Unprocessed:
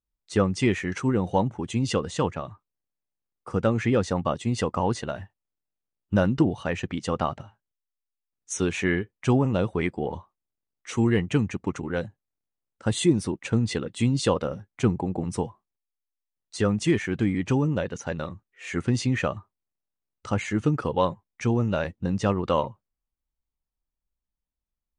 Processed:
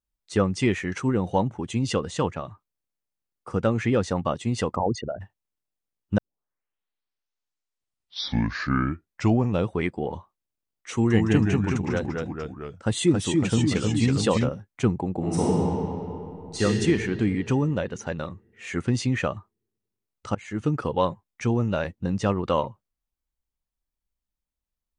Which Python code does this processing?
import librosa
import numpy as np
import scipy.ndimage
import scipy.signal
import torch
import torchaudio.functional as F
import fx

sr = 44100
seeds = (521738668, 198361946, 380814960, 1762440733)

y = fx.envelope_sharpen(x, sr, power=3.0, at=(4.75, 5.2), fade=0.02)
y = fx.echo_pitch(y, sr, ms=161, semitones=-1, count=3, db_per_echo=-3.0, at=(10.94, 14.49))
y = fx.reverb_throw(y, sr, start_s=15.18, length_s=1.44, rt60_s=2.9, drr_db=-8.0)
y = fx.edit(y, sr, fx.tape_start(start_s=6.18, length_s=3.54),
    fx.fade_in_from(start_s=20.35, length_s=0.53, curve='qsin', floor_db=-23.0), tone=tone)